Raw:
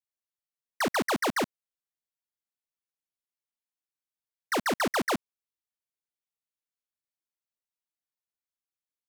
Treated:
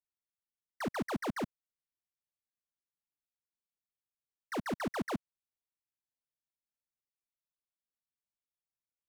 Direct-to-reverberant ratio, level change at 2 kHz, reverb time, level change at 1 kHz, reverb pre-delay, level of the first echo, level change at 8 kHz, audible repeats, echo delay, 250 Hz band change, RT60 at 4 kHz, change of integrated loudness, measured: none, -12.0 dB, none, -10.0 dB, none, none, -15.0 dB, none, none, -5.0 dB, none, -9.0 dB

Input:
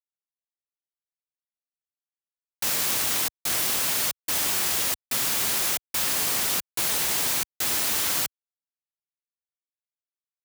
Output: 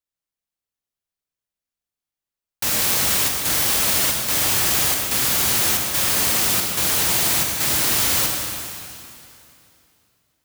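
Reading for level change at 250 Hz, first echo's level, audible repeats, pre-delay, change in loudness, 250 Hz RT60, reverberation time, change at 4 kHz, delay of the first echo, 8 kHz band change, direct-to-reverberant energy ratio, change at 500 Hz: +9.0 dB, none, none, 24 ms, +6.0 dB, 2.9 s, 2.7 s, +6.0 dB, none, +6.0 dB, 1.0 dB, +7.0 dB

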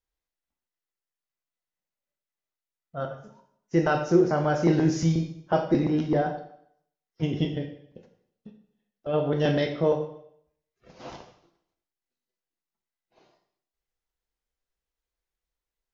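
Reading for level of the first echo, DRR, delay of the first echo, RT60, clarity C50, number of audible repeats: none, 3.5 dB, none, 0.70 s, 9.0 dB, none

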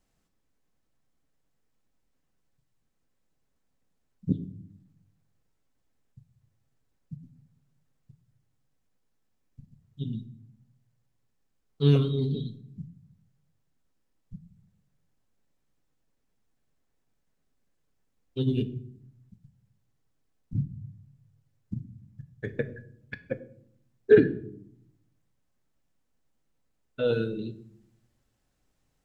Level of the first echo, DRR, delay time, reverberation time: none, 9.5 dB, none, 0.65 s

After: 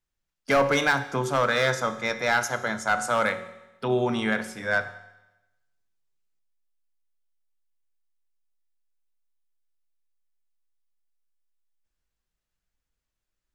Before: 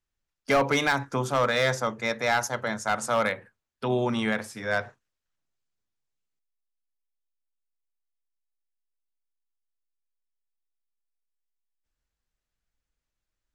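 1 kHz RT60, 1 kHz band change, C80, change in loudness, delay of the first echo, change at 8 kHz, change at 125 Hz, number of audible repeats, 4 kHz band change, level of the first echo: 1.0 s, +1.5 dB, 15.5 dB, +1.5 dB, none, +0.5 dB, -0.5 dB, none, +0.5 dB, none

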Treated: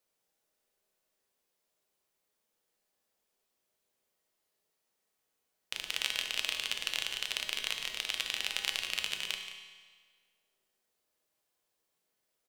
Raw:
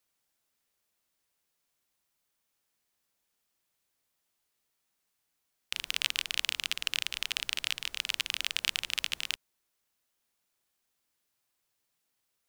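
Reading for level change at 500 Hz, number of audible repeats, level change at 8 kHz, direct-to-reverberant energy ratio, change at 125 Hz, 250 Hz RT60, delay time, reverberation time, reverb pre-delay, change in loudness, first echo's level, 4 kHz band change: +5.0 dB, 1, -2.0 dB, 3.5 dB, n/a, 1.6 s, 0.176 s, 1.6 s, 5 ms, -2.0 dB, -12.5 dB, -2.0 dB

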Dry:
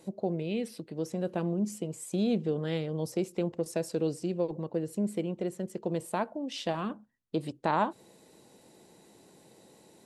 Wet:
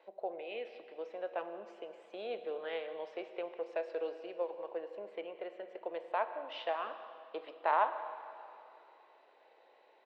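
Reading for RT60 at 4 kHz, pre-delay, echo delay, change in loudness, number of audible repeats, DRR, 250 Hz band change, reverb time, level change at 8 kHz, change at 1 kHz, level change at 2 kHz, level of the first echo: 2.5 s, 7 ms, 0.18 s, -7.0 dB, 1, 9.0 dB, -21.0 dB, 2.7 s, under -30 dB, -0.5 dB, -1.0 dB, -19.0 dB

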